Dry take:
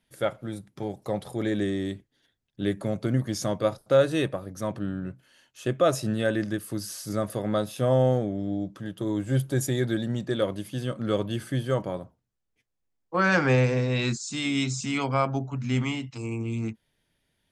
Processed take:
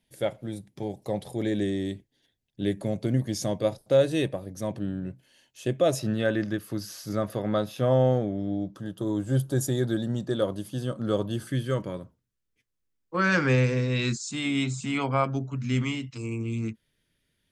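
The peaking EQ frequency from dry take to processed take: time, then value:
peaking EQ -11 dB 0.61 oct
1.3 kHz
from 5.99 s 8.9 kHz
from 8.75 s 2.2 kHz
from 11.47 s 750 Hz
from 14.31 s 5.6 kHz
from 15.24 s 790 Hz

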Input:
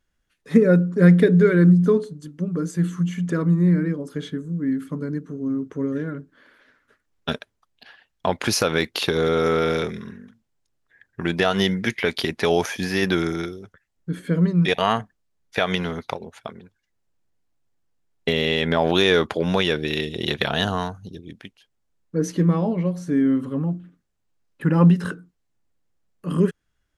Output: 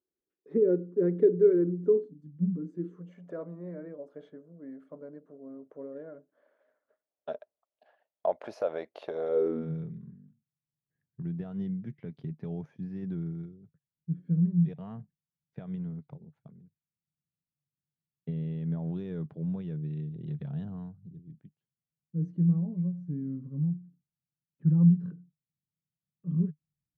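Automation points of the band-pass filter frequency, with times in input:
band-pass filter, Q 6
1.99 s 380 Hz
2.35 s 150 Hz
3.18 s 620 Hz
9.29 s 620 Hz
9.73 s 150 Hz

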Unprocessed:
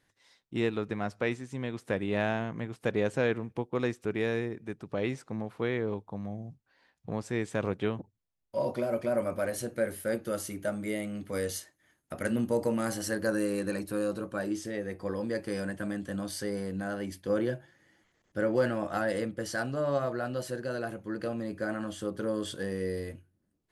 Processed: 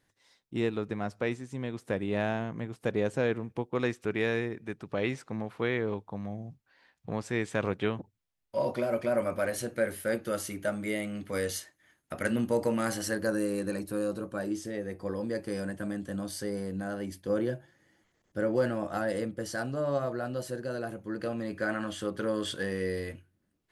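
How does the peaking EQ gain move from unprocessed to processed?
peaking EQ 2.2 kHz 2.4 oct
3.27 s -2.5 dB
3.96 s +4 dB
12.96 s +4 dB
13.39 s -3 dB
21.00 s -3 dB
21.56 s +6 dB

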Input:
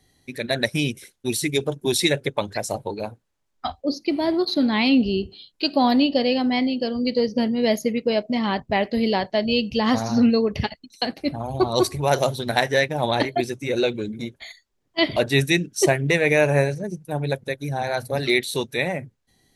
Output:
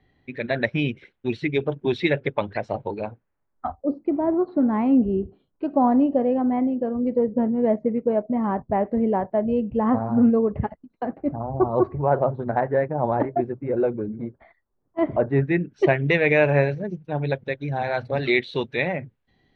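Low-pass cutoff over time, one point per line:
low-pass 24 dB/octave
3.06 s 2.8 kHz
3.74 s 1.3 kHz
15.29 s 1.3 kHz
16.00 s 3.3 kHz

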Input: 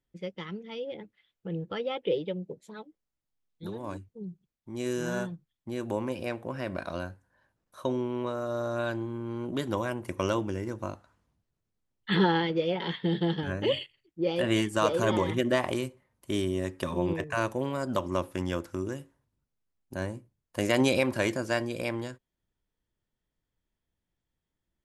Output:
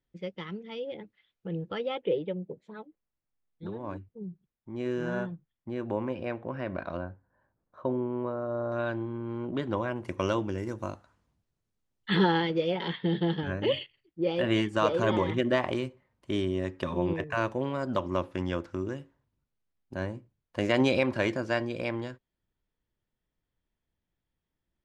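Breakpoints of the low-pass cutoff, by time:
5.1 kHz
from 2.02 s 2.4 kHz
from 6.97 s 1.3 kHz
from 8.72 s 2.8 kHz
from 9.96 s 5.4 kHz
from 10.58 s 9.8 kHz
from 12.88 s 4.1 kHz

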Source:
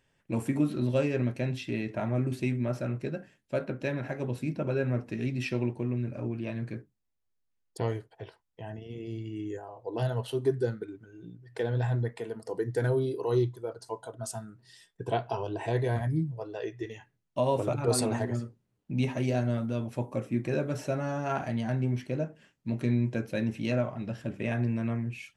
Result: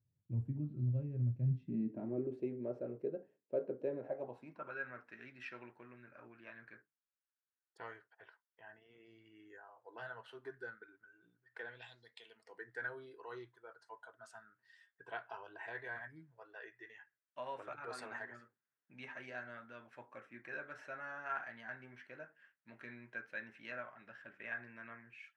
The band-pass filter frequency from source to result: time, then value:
band-pass filter, Q 3.7
1.34 s 110 Hz
2.30 s 440 Hz
3.98 s 440 Hz
4.74 s 1.5 kHz
11.64 s 1.5 kHz
11.99 s 5 kHz
12.64 s 1.6 kHz

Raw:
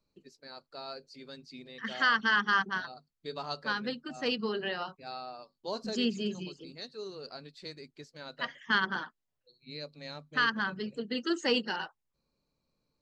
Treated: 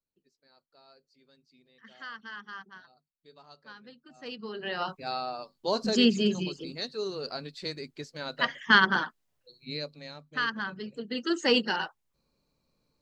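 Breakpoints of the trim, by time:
3.92 s -16 dB
4.57 s -4.5 dB
4.90 s +8 dB
9.72 s +8 dB
10.14 s -2 dB
10.92 s -2 dB
11.57 s +5 dB

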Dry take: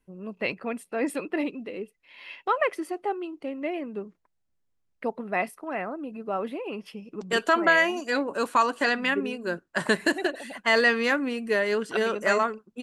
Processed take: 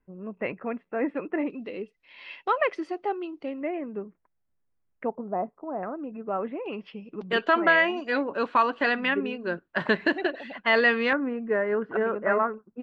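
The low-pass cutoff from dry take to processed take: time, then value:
low-pass 24 dB/octave
2.1 kHz
from 1.50 s 5.4 kHz
from 3.61 s 2.2 kHz
from 5.15 s 1 kHz
from 5.83 s 2.2 kHz
from 6.66 s 3.7 kHz
from 11.13 s 1.7 kHz

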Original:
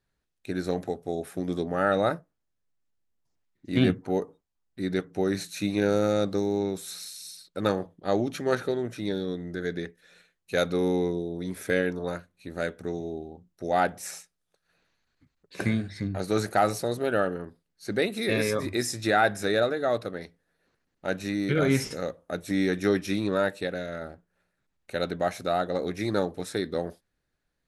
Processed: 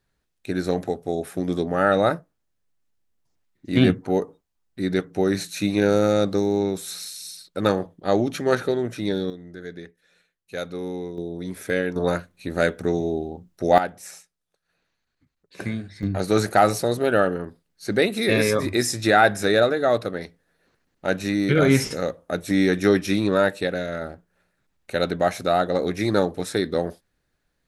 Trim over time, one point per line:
+5 dB
from 9.30 s -5.5 dB
from 11.18 s +1.5 dB
from 11.96 s +9.5 dB
from 13.78 s -2.5 dB
from 16.03 s +6 dB

